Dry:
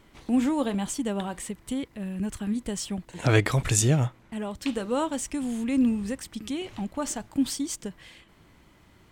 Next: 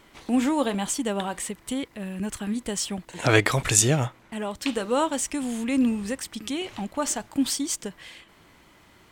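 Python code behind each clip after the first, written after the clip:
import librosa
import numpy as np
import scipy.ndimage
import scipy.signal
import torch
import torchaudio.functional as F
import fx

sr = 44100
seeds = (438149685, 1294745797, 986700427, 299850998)

y = fx.low_shelf(x, sr, hz=270.0, db=-9.5)
y = y * 10.0 ** (5.5 / 20.0)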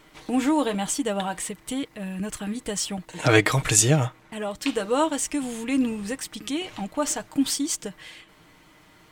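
y = x + 0.47 * np.pad(x, (int(6.5 * sr / 1000.0), 0))[:len(x)]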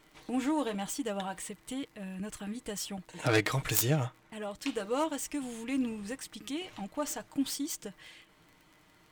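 y = fx.self_delay(x, sr, depth_ms=0.13)
y = fx.dmg_crackle(y, sr, seeds[0], per_s=43.0, level_db=-39.0)
y = y * 10.0 ** (-8.5 / 20.0)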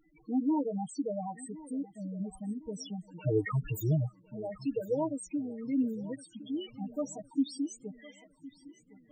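y = fx.spec_topn(x, sr, count=4)
y = fx.echo_feedback(y, sr, ms=1060, feedback_pct=44, wet_db=-19.0)
y = y * 10.0 ** (2.5 / 20.0)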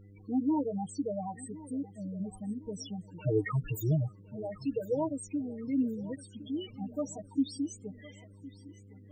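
y = fx.dmg_buzz(x, sr, base_hz=100.0, harmonics=5, level_db=-54.0, tilt_db=-8, odd_only=False)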